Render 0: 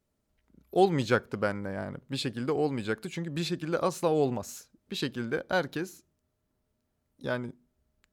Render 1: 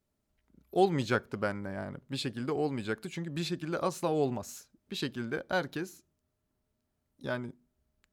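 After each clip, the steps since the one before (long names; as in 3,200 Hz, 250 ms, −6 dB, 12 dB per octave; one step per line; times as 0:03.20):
notch filter 490 Hz, Q 12
level −2.5 dB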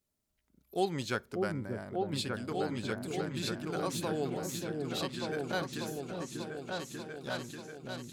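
high-shelf EQ 3,300 Hz +10 dB
echo whose low-pass opens from repeat to repeat 590 ms, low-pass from 400 Hz, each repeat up 2 octaves, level 0 dB
level −6 dB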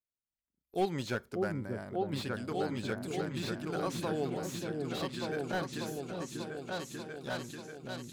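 noise gate with hold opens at −41 dBFS
slew-rate limiting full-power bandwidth 42 Hz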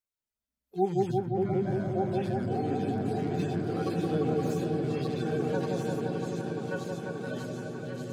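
harmonic-percussive split with one part muted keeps harmonic
on a send: echo whose low-pass opens from repeat to repeat 173 ms, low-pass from 750 Hz, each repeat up 1 octave, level 0 dB
on the sum: level +4.5 dB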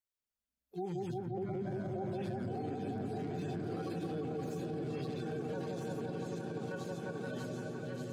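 brickwall limiter −27 dBFS, peak gain reduction 11.5 dB
level −4 dB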